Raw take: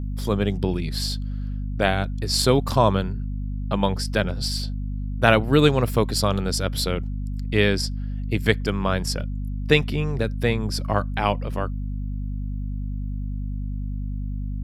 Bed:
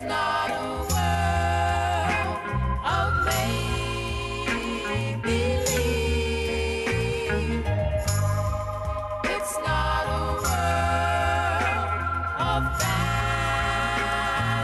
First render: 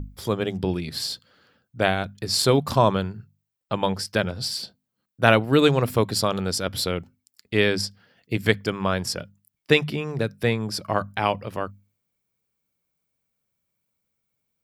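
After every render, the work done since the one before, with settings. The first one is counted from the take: notches 50/100/150/200/250 Hz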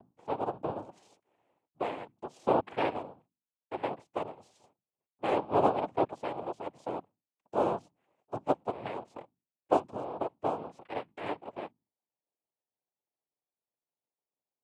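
ladder band-pass 480 Hz, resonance 50%; noise vocoder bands 4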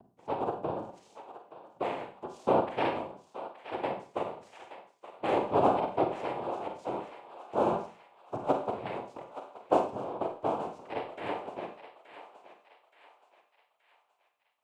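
thinning echo 0.874 s, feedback 50%, high-pass 890 Hz, level -10.5 dB; Schroeder reverb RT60 0.4 s, combs from 32 ms, DRR 4.5 dB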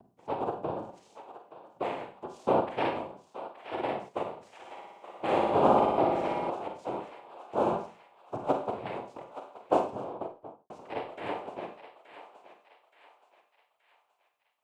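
3.52–4.09 doubler 50 ms -2.5 dB; 4.59–6.5 flutter echo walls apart 10.1 m, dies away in 1.2 s; 9.91–10.7 studio fade out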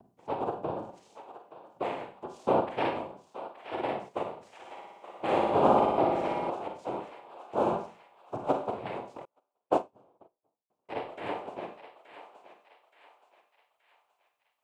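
9.25–10.89 upward expander 2.5:1, over -44 dBFS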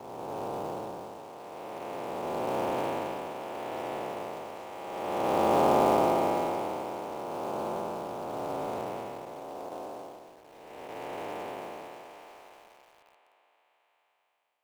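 time blur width 0.663 s; in parallel at -5 dB: companded quantiser 4-bit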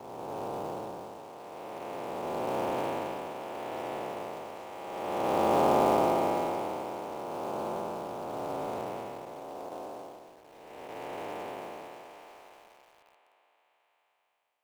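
gain -1 dB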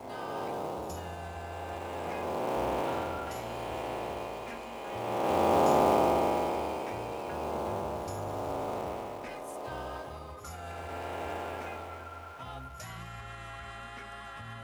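add bed -19 dB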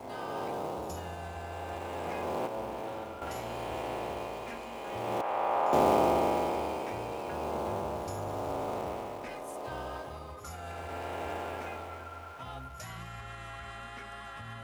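2.47–3.22 resonator 110 Hz, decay 0.4 s, mix 70%; 5.21–5.73 three-band isolator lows -19 dB, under 600 Hz, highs -16 dB, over 2500 Hz

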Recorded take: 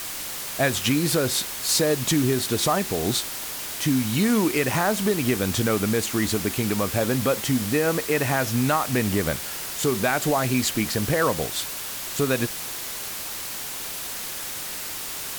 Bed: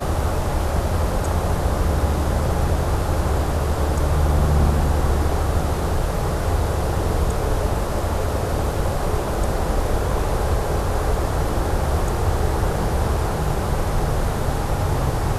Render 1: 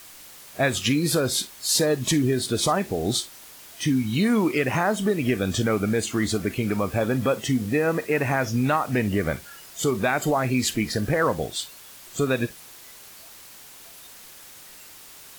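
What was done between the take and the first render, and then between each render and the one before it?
noise print and reduce 13 dB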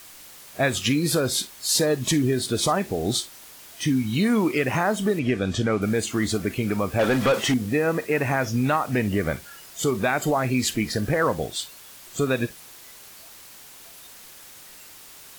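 5.19–5.82 air absorption 64 m; 6.99–7.54 overdrive pedal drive 20 dB, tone 3700 Hz, clips at -12.5 dBFS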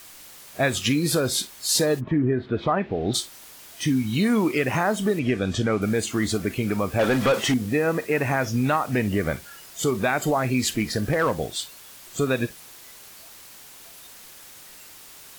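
1.99–3.13 LPF 1500 Hz -> 3800 Hz 24 dB/oct; 10.62–11.33 hard clip -15 dBFS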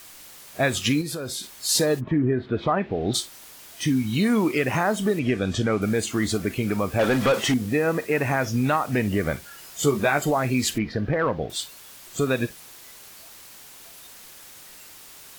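1.01–1.6 compressor, threshold -28 dBFS; 9.57–10.22 doubler 14 ms -4.5 dB; 10.78–11.5 air absorption 290 m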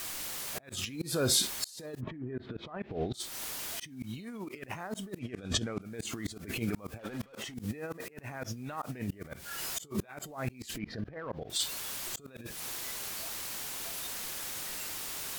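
negative-ratio compressor -29 dBFS, ratio -0.5; auto swell 0.291 s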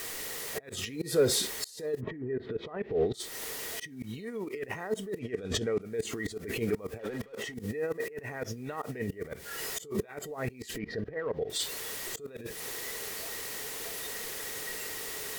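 soft clip -22.5 dBFS, distortion -18 dB; small resonant body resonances 440/1900 Hz, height 14 dB, ringing for 40 ms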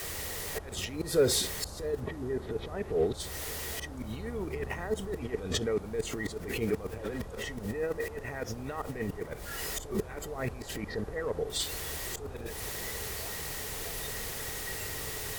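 add bed -24 dB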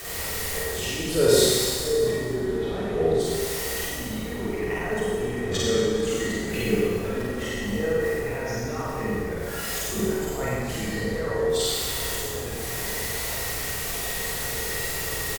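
on a send: reverse bouncing-ball echo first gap 50 ms, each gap 1.5×, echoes 5; on the sum: Schroeder reverb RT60 1.4 s, combs from 33 ms, DRR -5 dB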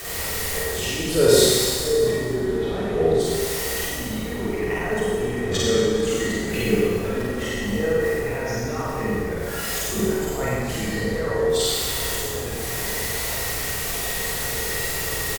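gain +3 dB

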